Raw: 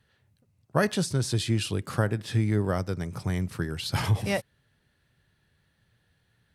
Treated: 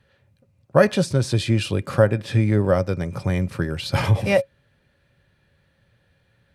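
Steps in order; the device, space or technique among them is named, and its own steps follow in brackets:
inside a helmet (high-shelf EQ 5,100 Hz −8.5 dB; hollow resonant body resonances 550/2,400 Hz, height 13 dB, ringing for 90 ms)
level +6 dB

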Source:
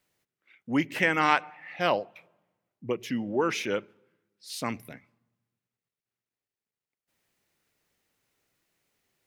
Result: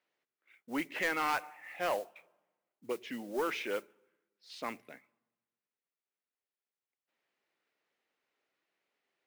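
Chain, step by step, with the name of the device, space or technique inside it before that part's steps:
carbon microphone (band-pass filter 350–3,400 Hz; soft clipping −20.5 dBFS, distortion −10 dB; noise that follows the level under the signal 19 dB)
level −4 dB

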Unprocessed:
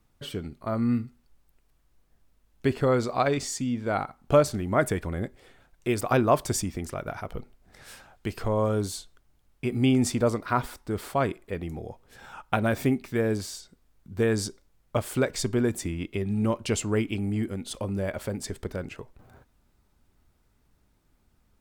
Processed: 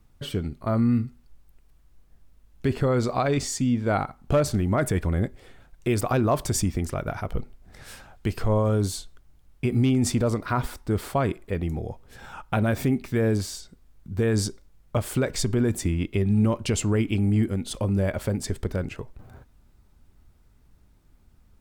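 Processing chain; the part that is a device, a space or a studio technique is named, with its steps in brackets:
low-shelf EQ 170 Hz +8 dB
clipper into limiter (hard clipping −10.5 dBFS, distortion −31 dB; brickwall limiter −16 dBFS, peak gain reduction 5.5 dB)
level +2.5 dB

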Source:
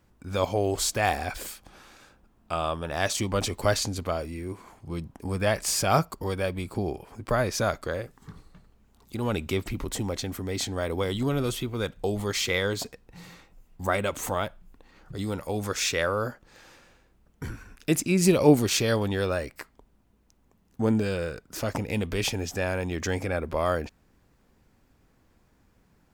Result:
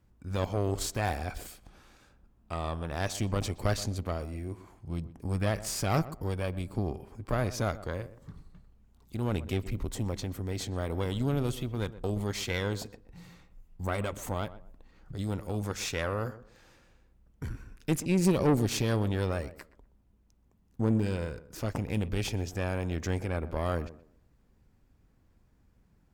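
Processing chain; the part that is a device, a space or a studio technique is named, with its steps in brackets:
low-shelf EQ 190 Hz +10.5 dB
rockabilly slapback (tube saturation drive 15 dB, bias 0.75; tape delay 124 ms, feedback 30%, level −13 dB, low-pass 1,100 Hz)
level −4 dB

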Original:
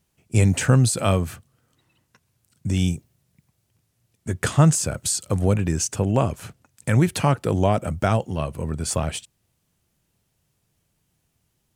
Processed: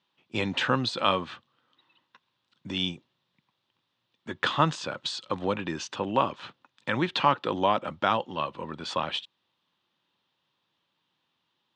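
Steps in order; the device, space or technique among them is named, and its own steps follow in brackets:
phone earpiece (loudspeaker in its box 420–3,800 Hz, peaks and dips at 430 Hz −9 dB, 670 Hz −10 dB, 1,000 Hz +4 dB, 1,500 Hz −3 dB, 2,200 Hz −6 dB, 3,600 Hz +7 dB)
level +3 dB

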